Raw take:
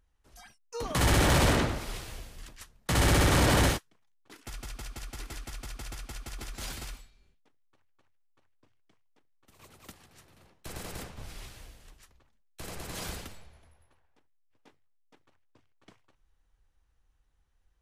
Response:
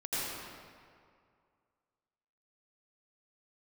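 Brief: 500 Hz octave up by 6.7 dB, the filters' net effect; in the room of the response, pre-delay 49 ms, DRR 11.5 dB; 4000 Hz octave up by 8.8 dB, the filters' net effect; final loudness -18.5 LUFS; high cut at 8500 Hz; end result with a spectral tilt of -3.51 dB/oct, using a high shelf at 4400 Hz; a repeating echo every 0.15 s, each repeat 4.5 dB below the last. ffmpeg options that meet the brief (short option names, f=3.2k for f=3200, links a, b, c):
-filter_complex "[0:a]lowpass=8.5k,equalizer=f=500:t=o:g=8,equalizer=f=4k:t=o:g=8,highshelf=f=4.4k:g=6,aecho=1:1:150|300|450|600|750|900|1050|1200|1350:0.596|0.357|0.214|0.129|0.0772|0.0463|0.0278|0.0167|0.01,asplit=2[a][b];[1:a]atrim=start_sample=2205,adelay=49[c];[b][c]afir=irnorm=-1:irlink=0,volume=-18dB[d];[a][d]amix=inputs=2:normalize=0,volume=5.5dB"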